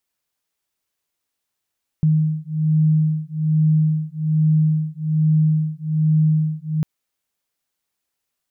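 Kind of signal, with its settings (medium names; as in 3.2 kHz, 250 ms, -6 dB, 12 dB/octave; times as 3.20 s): beating tones 155 Hz, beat 1.2 Hz, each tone -18 dBFS 4.80 s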